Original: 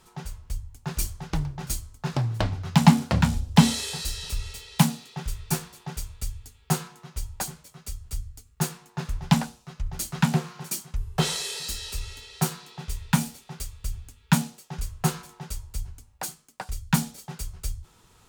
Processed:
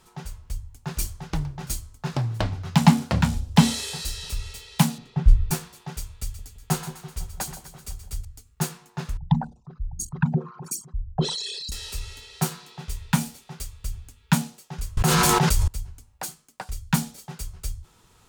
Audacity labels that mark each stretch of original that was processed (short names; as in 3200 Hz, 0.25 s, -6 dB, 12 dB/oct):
4.980000	5.510000	RIAA curve playback
6.200000	8.250000	split-band echo split 800 Hz, lows 0.168 s, highs 0.126 s, level -11 dB
9.170000	11.720000	formant sharpening exponent 3
14.970000	15.680000	fast leveller amount 100%